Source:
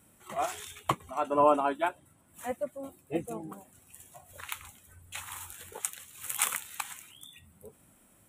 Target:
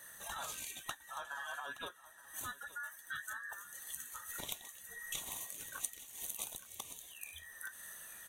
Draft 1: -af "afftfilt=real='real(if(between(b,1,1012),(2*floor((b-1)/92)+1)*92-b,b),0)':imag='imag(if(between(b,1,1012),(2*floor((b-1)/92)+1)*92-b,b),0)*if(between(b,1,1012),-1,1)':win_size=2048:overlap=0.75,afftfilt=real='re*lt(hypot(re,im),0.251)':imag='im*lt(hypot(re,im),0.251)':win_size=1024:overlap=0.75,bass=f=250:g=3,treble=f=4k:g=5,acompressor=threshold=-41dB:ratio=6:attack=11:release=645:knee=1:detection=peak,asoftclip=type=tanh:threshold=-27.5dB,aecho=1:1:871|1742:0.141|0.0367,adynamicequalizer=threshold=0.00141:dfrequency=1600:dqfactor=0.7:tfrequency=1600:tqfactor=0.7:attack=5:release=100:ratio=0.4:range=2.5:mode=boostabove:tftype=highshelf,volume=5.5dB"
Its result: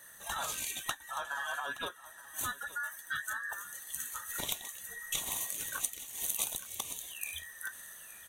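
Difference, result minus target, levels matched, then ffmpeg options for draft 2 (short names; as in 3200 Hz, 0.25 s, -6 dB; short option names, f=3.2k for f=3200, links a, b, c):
compressor: peak gain reduction -6.5 dB
-af "afftfilt=real='real(if(between(b,1,1012),(2*floor((b-1)/92)+1)*92-b,b),0)':imag='imag(if(between(b,1,1012),(2*floor((b-1)/92)+1)*92-b,b),0)*if(between(b,1,1012),-1,1)':win_size=2048:overlap=0.75,afftfilt=real='re*lt(hypot(re,im),0.251)':imag='im*lt(hypot(re,im),0.251)':win_size=1024:overlap=0.75,bass=f=250:g=3,treble=f=4k:g=5,acompressor=threshold=-49dB:ratio=6:attack=11:release=645:knee=1:detection=peak,asoftclip=type=tanh:threshold=-27.5dB,aecho=1:1:871|1742:0.141|0.0367,adynamicequalizer=threshold=0.00141:dfrequency=1600:dqfactor=0.7:tfrequency=1600:tqfactor=0.7:attack=5:release=100:ratio=0.4:range=2.5:mode=boostabove:tftype=highshelf,volume=5.5dB"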